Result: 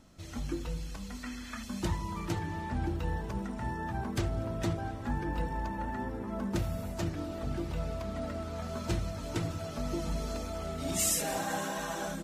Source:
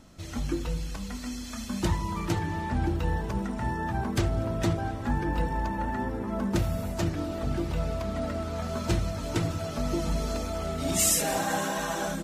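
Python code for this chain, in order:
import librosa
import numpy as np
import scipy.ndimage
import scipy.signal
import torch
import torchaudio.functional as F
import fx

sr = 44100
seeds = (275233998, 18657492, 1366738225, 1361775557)

y = fx.curve_eq(x, sr, hz=(690.0, 1700.0, 5200.0), db=(0, 10, -3), at=(1.23, 1.63))
y = y * librosa.db_to_amplitude(-5.5)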